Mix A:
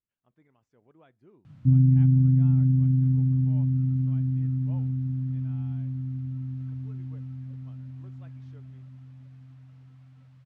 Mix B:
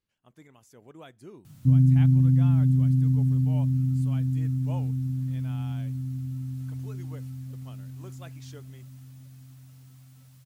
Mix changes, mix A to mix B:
speech +10.5 dB; master: remove low-pass 2.3 kHz 12 dB/octave

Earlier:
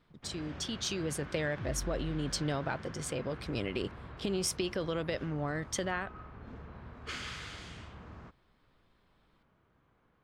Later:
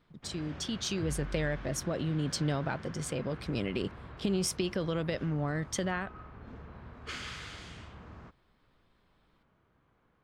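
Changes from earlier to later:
speech: add peaking EQ 180 Hz +6 dB 1 oct; second sound: entry -0.60 s

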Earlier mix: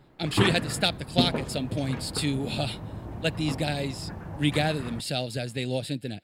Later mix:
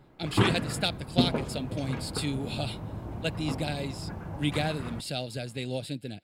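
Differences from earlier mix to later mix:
speech -4.0 dB; master: add band-stop 1.8 kHz, Q 14

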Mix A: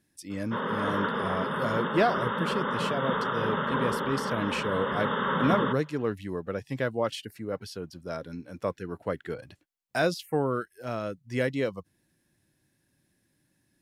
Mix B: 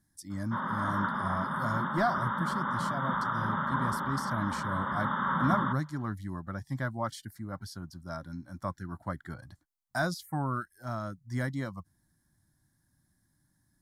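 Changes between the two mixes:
speech: add bass shelf 75 Hz +9.5 dB; master: add static phaser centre 1.1 kHz, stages 4

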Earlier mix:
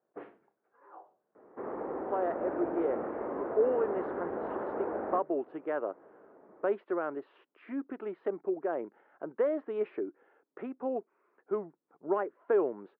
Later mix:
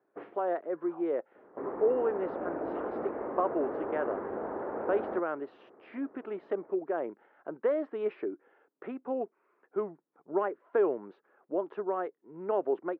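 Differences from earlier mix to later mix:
speech: entry -1.75 s; second sound: add distance through air 210 m; master: remove distance through air 180 m

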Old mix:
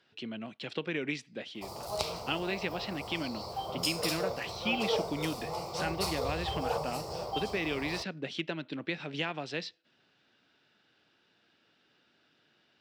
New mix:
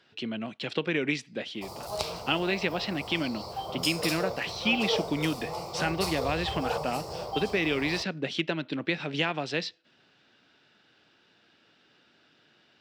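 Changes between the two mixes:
speech +6.0 dB; reverb: on

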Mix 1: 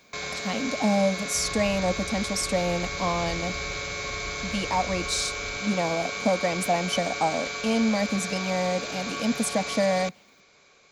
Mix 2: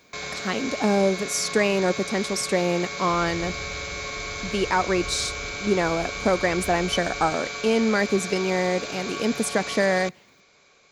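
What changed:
speech: remove static phaser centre 390 Hz, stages 6; second sound: entry +1.75 s

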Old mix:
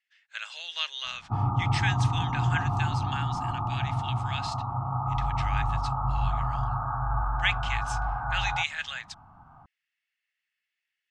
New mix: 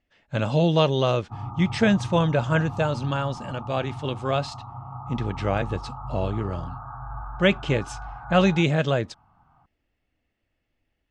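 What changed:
speech: remove Chebyshev high-pass 1.7 kHz, order 3; background -7.5 dB

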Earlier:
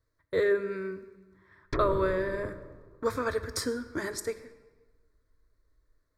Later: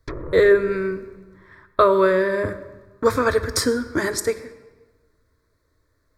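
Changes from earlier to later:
speech +11.0 dB; background: entry -1.65 s

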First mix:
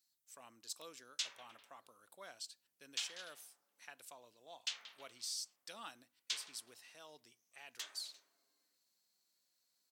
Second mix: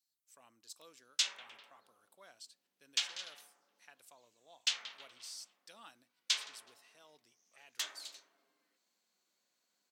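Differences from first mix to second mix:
speech -5.5 dB; background +8.0 dB

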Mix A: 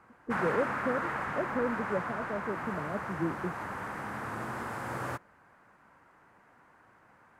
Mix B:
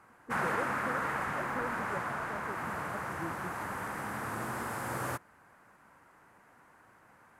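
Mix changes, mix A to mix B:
speech -9.5 dB; master: add peaking EQ 12 kHz +10.5 dB 1.4 oct

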